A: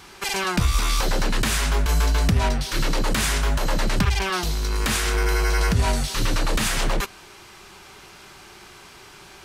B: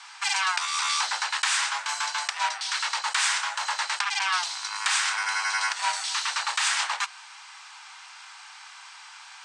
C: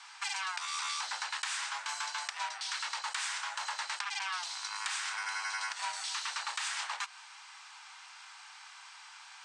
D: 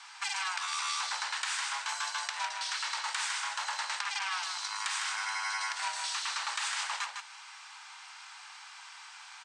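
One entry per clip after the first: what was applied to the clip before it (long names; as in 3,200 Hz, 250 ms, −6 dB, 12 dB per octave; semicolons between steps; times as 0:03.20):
Chebyshev band-pass filter 850–8,600 Hz, order 4; level +1.5 dB
downward compressor, threshold −27 dBFS, peak gain reduction 6.5 dB; level −6 dB
single-tap delay 155 ms −6 dB; level +1.5 dB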